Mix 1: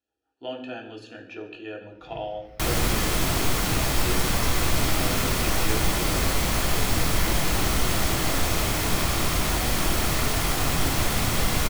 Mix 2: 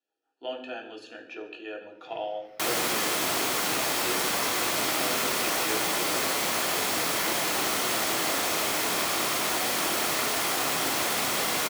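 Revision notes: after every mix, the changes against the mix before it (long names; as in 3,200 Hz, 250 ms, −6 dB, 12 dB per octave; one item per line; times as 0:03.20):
master: add high-pass filter 350 Hz 12 dB per octave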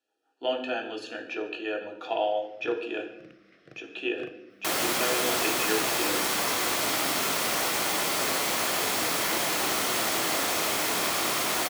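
speech +6.5 dB
first sound: send off
second sound: entry +2.05 s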